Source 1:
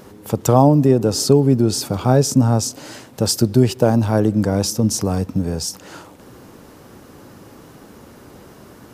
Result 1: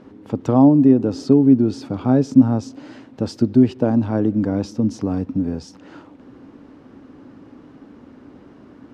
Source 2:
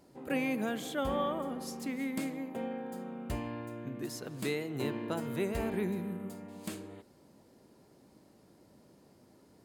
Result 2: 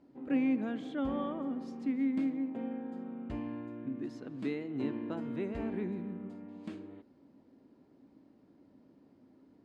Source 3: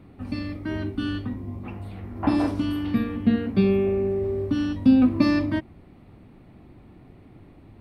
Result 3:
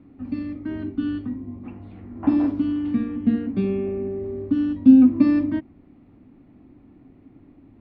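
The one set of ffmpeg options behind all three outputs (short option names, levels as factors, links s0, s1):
-af "lowpass=3100,equalizer=f=270:w=2.8:g=12.5,volume=0.473"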